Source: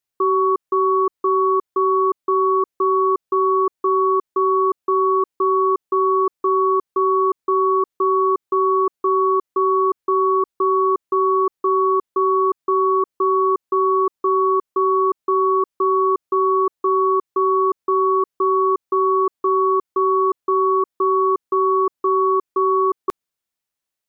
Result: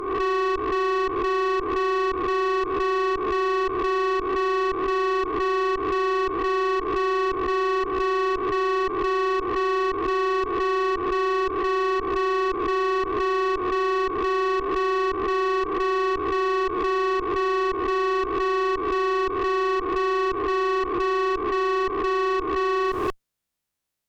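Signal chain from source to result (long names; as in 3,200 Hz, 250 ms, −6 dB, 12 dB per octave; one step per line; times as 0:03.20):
peak hold with a rise ahead of every peak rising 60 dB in 0.88 s
tube saturation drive 22 dB, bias 0.4
low-shelf EQ 250 Hz +8.5 dB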